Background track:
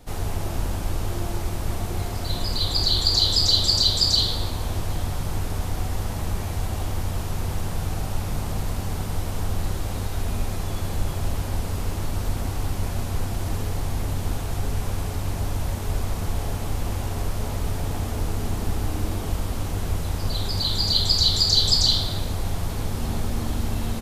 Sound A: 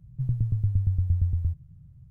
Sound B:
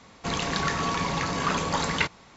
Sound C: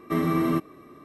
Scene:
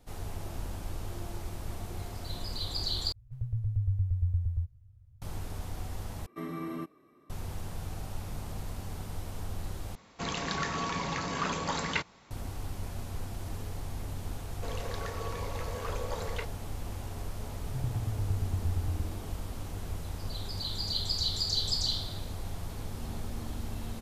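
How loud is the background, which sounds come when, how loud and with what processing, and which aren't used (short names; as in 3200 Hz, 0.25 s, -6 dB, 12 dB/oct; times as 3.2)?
background track -11.5 dB
3.12 replace with A -4.5 dB + elliptic band-stop 110–440 Hz
6.26 replace with C -13.5 dB + low shelf 67 Hz -7.5 dB
9.95 replace with B -6 dB
14.38 add B -16 dB + resonant high-pass 480 Hz, resonance Q 5.3
17.55 add A -8 dB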